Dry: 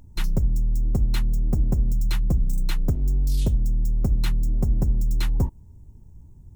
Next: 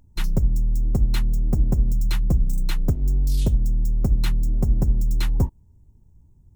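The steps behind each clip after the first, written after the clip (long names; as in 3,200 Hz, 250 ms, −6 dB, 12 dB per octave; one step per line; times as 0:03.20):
expander for the loud parts 1.5 to 1, over −36 dBFS
level +3 dB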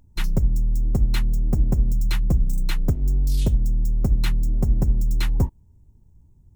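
dynamic equaliser 2,100 Hz, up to +3 dB, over −46 dBFS, Q 1.2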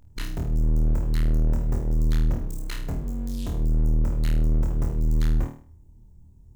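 gain into a clipping stage and back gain 28 dB
on a send: flutter between parallel walls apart 4.4 metres, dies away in 0.44 s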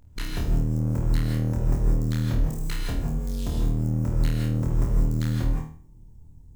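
reverb whose tail is shaped and stops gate 190 ms rising, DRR 0.5 dB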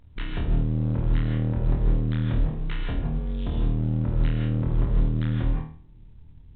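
mu-law 64 kbit/s 8,000 Hz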